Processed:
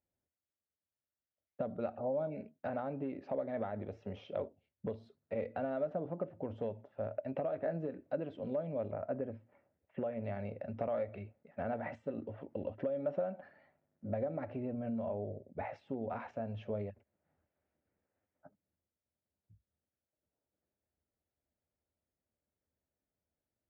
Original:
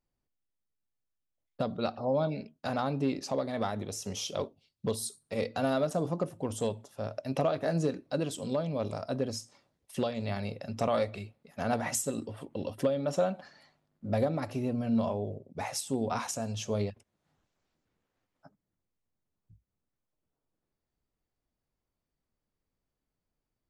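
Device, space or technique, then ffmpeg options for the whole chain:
bass amplifier: -filter_complex "[0:a]acompressor=threshold=-31dB:ratio=5,highpass=75,equalizer=frequency=78:width_type=q:width=4:gain=8,equalizer=frequency=140:width_type=q:width=4:gain=-5,equalizer=frequency=590:width_type=q:width=4:gain=6,equalizer=frequency=1100:width_type=q:width=4:gain=-7,lowpass=frequency=2200:width=0.5412,lowpass=frequency=2200:width=1.3066,asettb=1/sr,asplit=3[link_01][link_02][link_03];[link_01]atrim=end=8.914[link_04];[link_02]atrim=start=8.91:end=10.24,asetpts=PTS-STARTPTS,afade=type=in:duration=0.004:curve=qsin,afade=type=out:start_time=1.326:duration=0.004:curve=qsin,lowpass=frequency=2700:width=0.5412,lowpass=frequency=2700:width=1.3066[link_05];[link_03]atrim=start=10.236[link_06];[link_04][link_05]acrossfade=duration=0.004:curve1=hsin:curve2=qsin[link_07];[link_07][link_06]acrossfade=duration=0.004:curve1=qsin:curve2=hsin,volume=-4dB"

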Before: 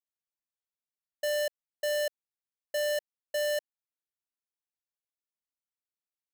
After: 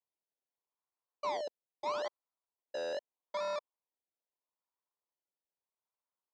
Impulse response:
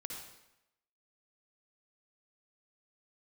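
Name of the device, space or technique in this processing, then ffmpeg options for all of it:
circuit-bent sampling toy: -filter_complex "[0:a]acrusher=samples=27:mix=1:aa=0.000001:lfo=1:lforange=27:lforate=0.79,highpass=440,equalizer=frequency=1000:width_type=q:width=4:gain=9,equalizer=frequency=1700:width_type=q:width=4:gain=-7,equalizer=frequency=2700:width_type=q:width=4:gain=-8,lowpass=frequency=5100:width=0.5412,lowpass=frequency=5100:width=1.3066,asettb=1/sr,asplit=3[link_01][link_02][link_03];[link_01]atrim=end=1.374[link_04];[link_02]atrim=start=1.37:end=1.86,asetpts=PTS-STARTPTS,afade=type=in:duration=0.004:curve=qsin,afade=type=out:start_time=0.486:duration=0.004:curve=qsin,equalizer=frequency=1800:width=1.1:gain=-11[link_05];[link_03]atrim=start=1.856[link_06];[link_04][link_05]acrossfade=duration=0.004:curve1=hsin:curve2=qsin[link_07];[link_07][link_06]acrossfade=duration=0.004:curve1=qsin:curve2=hsin,volume=-6dB"

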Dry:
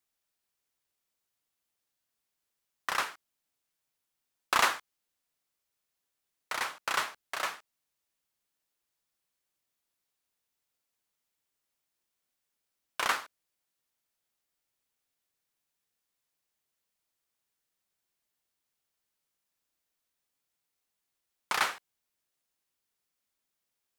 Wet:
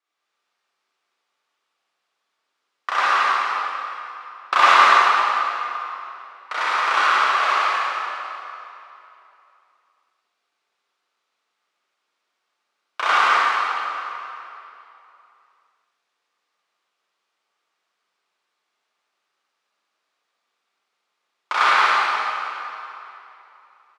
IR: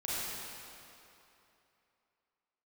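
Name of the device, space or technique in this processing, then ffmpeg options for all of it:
station announcement: -filter_complex "[0:a]highpass=380,lowpass=4100,equalizer=frequency=1200:width_type=o:width=0.34:gain=7.5,aecho=1:1:172|277:0.631|0.316[link_01];[1:a]atrim=start_sample=2205[link_02];[link_01][link_02]afir=irnorm=-1:irlink=0,volume=7dB"

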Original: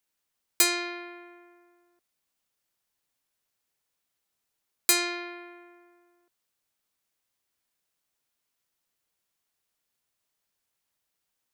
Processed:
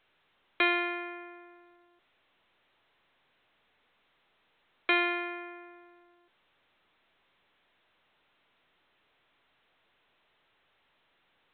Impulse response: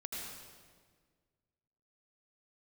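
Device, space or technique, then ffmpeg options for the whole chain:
telephone: -af "highpass=320,lowpass=3300,volume=3.5dB" -ar 8000 -c:a pcm_alaw

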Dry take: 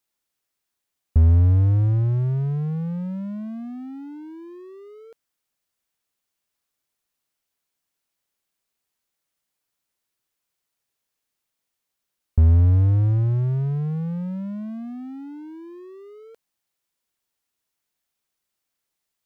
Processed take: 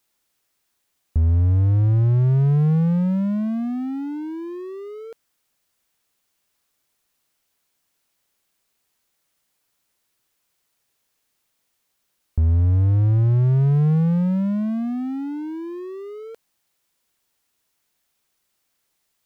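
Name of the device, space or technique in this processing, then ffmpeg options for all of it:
stacked limiters: -af "alimiter=limit=-14.5dB:level=0:latency=1:release=10,alimiter=limit=-20dB:level=0:latency=1:release=210,volume=8.5dB"

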